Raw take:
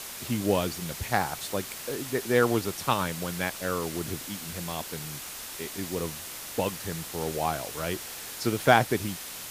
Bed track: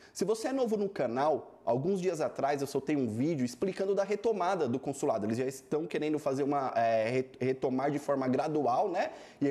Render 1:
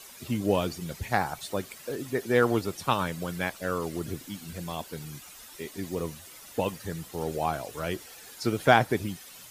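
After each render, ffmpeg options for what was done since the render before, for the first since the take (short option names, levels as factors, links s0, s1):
-af "afftdn=nr=12:nf=-40"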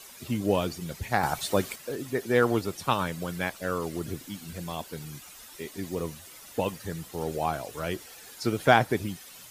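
-filter_complex "[0:a]asettb=1/sr,asplit=3[s0][s1][s2];[s0]atrim=end=1.234[s3];[s1]atrim=start=1.23:end=1.76,asetpts=PTS-STARTPTS,afade=t=in:d=0.004:c=qsin,afade=t=out:st=0.526:d=0.004:c=qsin,acontrast=61[s4];[s2]atrim=start=1.756[s5];[s3][s4]acrossfade=d=0.004:c1=hsin:c2=qsin[s6];[s6][s5]acrossfade=d=0.004:c1=qsin:c2=hsin"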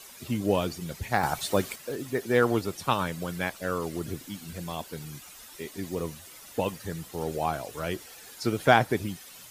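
-filter_complex "[0:a]asettb=1/sr,asplit=3[s0][s1][s2];[s0]atrim=end=1.154[s3];[s1]atrim=start=1.15:end=2.36,asetpts=PTS-STARTPTS,afade=t=in:d=0.004:c=qsin,afade=t=out:st=1.206:d=0.004:c=qsin,acrusher=bits=9:mode=log:mix=0:aa=0.000001[s4];[s2]atrim=start=2.356[s5];[s3][s4]acrossfade=d=0.004:c1=hsin:c2=qsin[s6];[s6][s5]acrossfade=d=0.004:c1=qsin:c2=hsin"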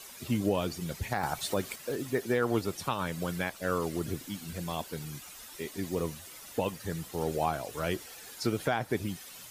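-af "alimiter=limit=0.15:level=0:latency=1:release=272"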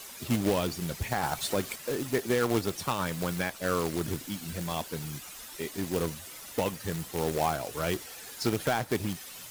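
-filter_complex "[0:a]asplit=2[s0][s1];[s1]asoftclip=type=tanh:threshold=0.0251,volume=0.335[s2];[s0][s2]amix=inputs=2:normalize=0,acrusher=bits=2:mode=log:mix=0:aa=0.000001"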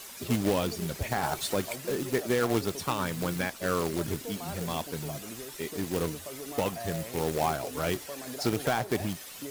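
-filter_complex "[1:a]volume=0.266[s0];[0:a][s0]amix=inputs=2:normalize=0"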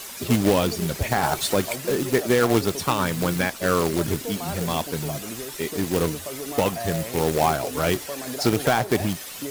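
-af "volume=2.37"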